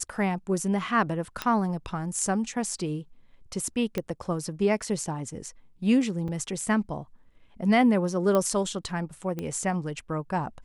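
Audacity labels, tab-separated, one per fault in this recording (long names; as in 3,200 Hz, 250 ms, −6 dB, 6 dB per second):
1.420000	1.420000	click −13 dBFS
3.980000	3.980000	click −15 dBFS
6.280000	6.290000	drop-out 5.1 ms
8.350000	8.350000	click −13 dBFS
9.390000	9.390000	click −19 dBFS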